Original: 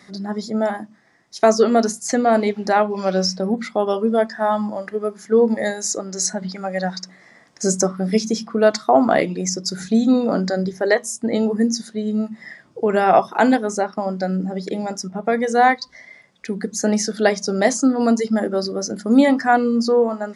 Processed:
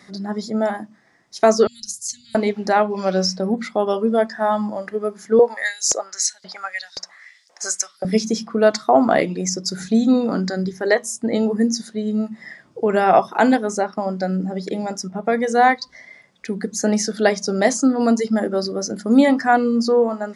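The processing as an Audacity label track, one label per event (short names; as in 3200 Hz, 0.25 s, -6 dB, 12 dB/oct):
1.670000	2.350000	inverse Chebyshev band-stop 400–1000 Hz, stop band 80 dB
5.390000	8.050000	LFO high-pass saw up 1.9 Hz 510–5600 Hz
10.260000	10.860000	bell 610 Hz -7.5 dB 0.71 oct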